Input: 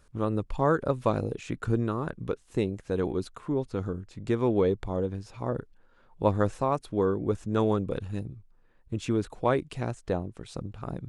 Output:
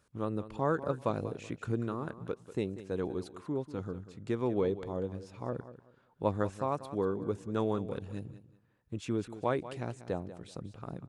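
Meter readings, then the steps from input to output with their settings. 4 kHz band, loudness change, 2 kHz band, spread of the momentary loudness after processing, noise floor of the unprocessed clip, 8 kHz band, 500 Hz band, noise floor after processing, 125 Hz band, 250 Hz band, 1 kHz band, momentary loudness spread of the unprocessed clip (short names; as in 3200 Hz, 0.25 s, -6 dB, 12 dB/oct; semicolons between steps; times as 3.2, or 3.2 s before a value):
-6.0 dB, -6.0 dB, -6.0 dB, 11 LU, -60 dBFS, n/a, -6.0 dB, -68 dBFS, -7.0 dB, -6.0 dB, -6.0 dB, 10 LU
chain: HPF 88 Hz; feedback echo 0.19 s, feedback 24%, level -14 dB; gain -6 dB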